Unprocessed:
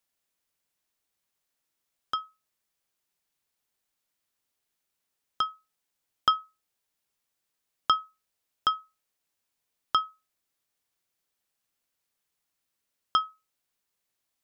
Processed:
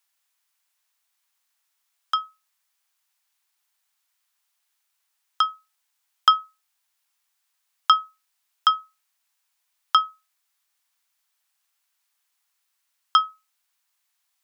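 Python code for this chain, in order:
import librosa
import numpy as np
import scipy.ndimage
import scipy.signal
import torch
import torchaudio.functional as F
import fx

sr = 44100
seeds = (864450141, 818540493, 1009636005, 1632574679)

y = scipy.signal.sosfilt(scipy.signal.butter(4, 810.0, 'highpass', fs=sr, output='sos'), x)
y = y * 10.0 ** (7.0 / 20.0)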